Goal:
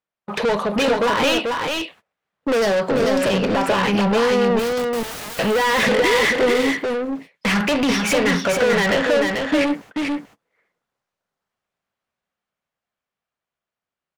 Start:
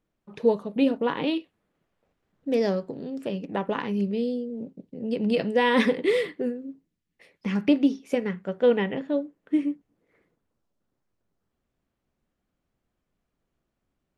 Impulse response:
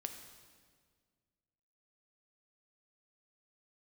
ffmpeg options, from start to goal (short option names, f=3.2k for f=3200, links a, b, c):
-filter_complex "[0:a]agate=range=-32dB:threshold=-49dB:ratio=16:detection=peak,equalizer=f=310:w=1.4:g=-10,dynaudnorm=f=510:g=13:m=11.5dB,alimiter=limit=-21dB:level=0:latency=1:release=246,asplit=3[a][b][c];[a]afade=t=out:st=3.48:d=0.02[d];[b]acompressor=threshold=-32dB:ratio=6,afade=t=in:st=3.48:d=0.02,afade=t=out:st=3.97:d=0.02[e];[c]afade=t=in:st=3.97:d=0.02[f];[d][e][f]amix=inputs=3:normalize=0,asplit=2[g][h];[h]highpass=f=720:p=1,volume=32dB,asoftclip=type=tanh:threshold=-15.5dB[i];[g][i]amix=inputs=2:normalize=0,lowpass=f=4.6k:p=1,volume=-6dB,asettb=1/sr,asplit=3[j][k][l];[j]atrim=end=4.594[m];[k]atrim=start=4.59:end=5.39,asetpts=PTS-STARTPTS,afade=t=in:d=0.004:c=qsin,afade=t=out:st=0.796:d=0.004:c=qsin,aeval=exprs='(mod(39.8*val(0)+1,2)-1)/39.8':c=same[n];[l]atrim=start=5.386[o];[m][n]acrossfade=d=0.004:c1=hsin:c2=qsin[p];[p][o]acrossfade=d=0.004:c1=qsin:c2=hsin,aecho=1:1:439:0.631,volume=4dB"